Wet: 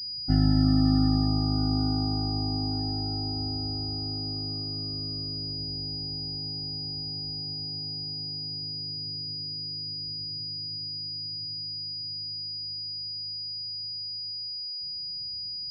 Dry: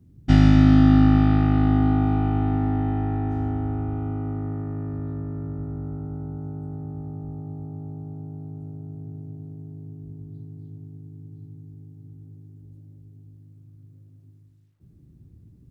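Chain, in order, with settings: loudest bins only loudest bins 32; pulse-width modulation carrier 4900 Hz; gain -7.5 dB

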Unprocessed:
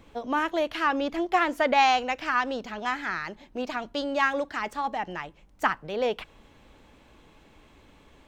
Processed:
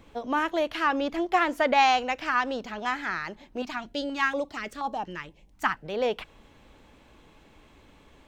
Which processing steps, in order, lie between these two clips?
3.62–5.86 stepped notch 4.2 Hz 510–2000 Hz

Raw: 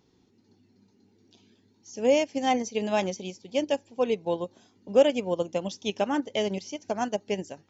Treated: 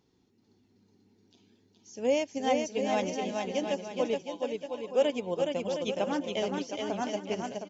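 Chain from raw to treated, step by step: 4.22–5.01 HPF 1100 Hz -> 370 Hz 12 dB/oct; bouncing-ball echo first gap 0.42 s, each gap 0.7×, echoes 5; gain -5 dB

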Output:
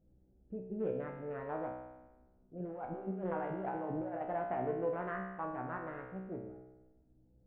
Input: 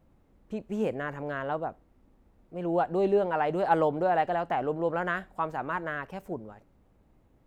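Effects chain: Wiener smoothing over 41 samples; limiter -22 dBFS, peak gain reduction 10.5 dB; 2.6–4.21 negative-ratio compressor -33 dBFS, ratio -0.5; Gaussian blur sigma 4.1 samples; resonator 63 Hz, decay 1.1 s, harmonics all, mix 90%; gain +8 dB

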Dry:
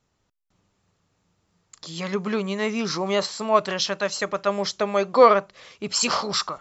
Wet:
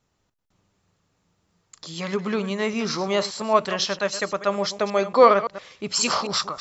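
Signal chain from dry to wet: reverse delay 0.114 s, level -12.5 dB

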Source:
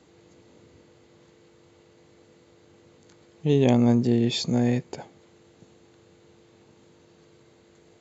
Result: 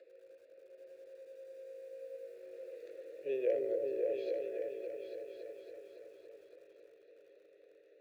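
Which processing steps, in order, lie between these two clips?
Doppler pass-by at 2.82, 27 m/s, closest 5.2 m; HPF 73 Hz 12 dB/oct; three-band isolator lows -21 dB, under 260 Hz, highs -22 dB, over 3200 Hz; upward compressor, threshold -47 dBFS; vowel filter e; resonant high shelf 2400 Hz +9 dB, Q 3; fixed phaser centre 840 Hz, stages 6; repeats that get brighter 0.28 s, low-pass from 400 Hz, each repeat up 2 oct, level 0 dB; lo-fi delay 81 ms, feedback 35%, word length 12-bit, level -13 dB; gain +11.5 dB

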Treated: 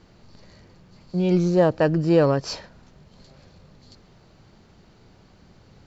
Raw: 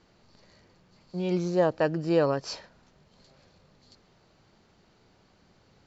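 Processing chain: in parallel at -10 dB: soft clip -30 dBFS, distortion -6 dB; on the sum: low shelf 230 Hz +8 dB; gain +3 dB

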